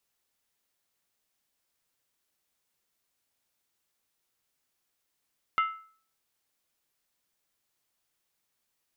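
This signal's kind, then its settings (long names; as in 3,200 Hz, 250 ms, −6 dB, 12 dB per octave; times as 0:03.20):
struck skin, lowest mode 1,310 Hz, decay 0.47 s, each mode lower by 8 dB, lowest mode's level −20 dB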